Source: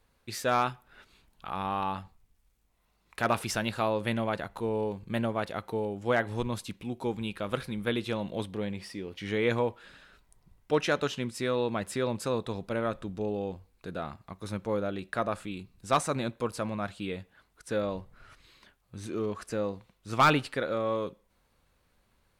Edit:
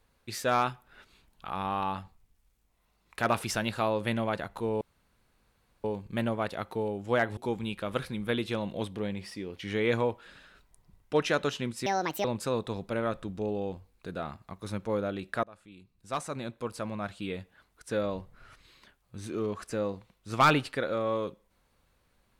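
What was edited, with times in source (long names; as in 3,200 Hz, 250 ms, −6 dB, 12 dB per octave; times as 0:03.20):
0:04.81: splice in room tone 1.03 s
0:06.34–0:06.95: remove
0:11.44–0:12.04: play speed 156%
0:15.23–0:17.19: fade in, from −23.5 dB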